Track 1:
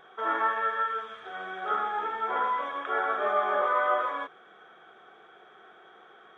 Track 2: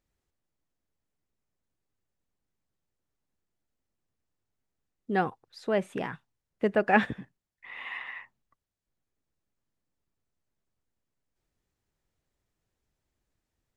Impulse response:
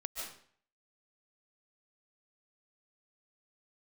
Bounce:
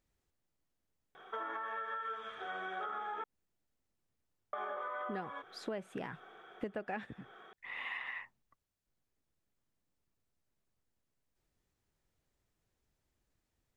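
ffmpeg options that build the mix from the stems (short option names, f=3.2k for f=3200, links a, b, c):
-filter_complex "[0:a]alimiter=limit=-23dB:level=0:latency=1:release=116,adelay=1150,volume=-2dB,asplit=3[a][b][c];[a]atrim=end=3.24,asetpts=PTS-STARTPTS,afade=t=out:st=3.236:d=0.004:c=hsin[d];[b]atrim=start=3.24:end=4.53,asetpts=PTS-STARTPTS,volume=0[e];[c]atrim=start=4.53,asetpts=PTS-STARTPTS,afade=t=in:d=0.004:c=hsin[f];[d][e][f]concat=n=3:v=0:a=1[g];[1:a]volume=-0.5dB[h];[g][h]amix=inputs=2:normalize=0,acompressor=threshold=-37dB:ratio=12"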